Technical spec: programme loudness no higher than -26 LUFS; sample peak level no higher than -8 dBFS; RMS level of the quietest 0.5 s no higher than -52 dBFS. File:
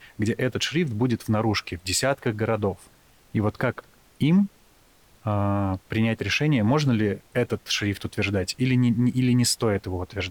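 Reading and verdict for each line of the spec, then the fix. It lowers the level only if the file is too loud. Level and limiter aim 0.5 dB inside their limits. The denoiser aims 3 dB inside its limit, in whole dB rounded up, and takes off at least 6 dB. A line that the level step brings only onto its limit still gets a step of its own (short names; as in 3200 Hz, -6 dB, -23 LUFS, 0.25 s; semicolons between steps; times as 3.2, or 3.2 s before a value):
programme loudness -24.5 LUFS: fail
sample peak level -10.0 dBFS: OK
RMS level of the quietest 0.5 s -57 dBFS: OK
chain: gain -2 dB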